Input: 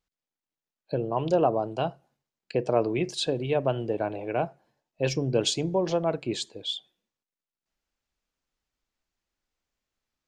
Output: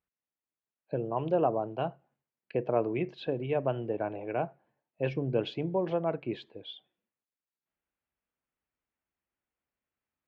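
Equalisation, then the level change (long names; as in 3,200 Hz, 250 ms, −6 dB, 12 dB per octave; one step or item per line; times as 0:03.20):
high-pass filter 69 Hz
low-pass filter 2,700 Hz 24 dB per octave
−4.0 dB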